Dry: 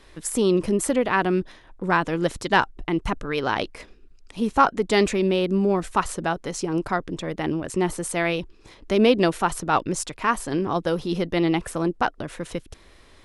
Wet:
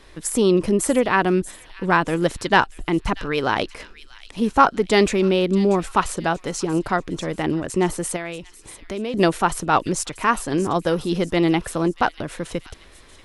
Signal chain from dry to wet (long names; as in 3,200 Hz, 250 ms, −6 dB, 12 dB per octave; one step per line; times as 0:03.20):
0:08.16–0:09.14: downward compressor 2 to 1, threshold −39 dBFS, peak gain reduction 14.5 dB
delay with a high-pass on its return 636 ms, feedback 44%, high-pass 2,700 Hz, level −13 dB
level +3 dB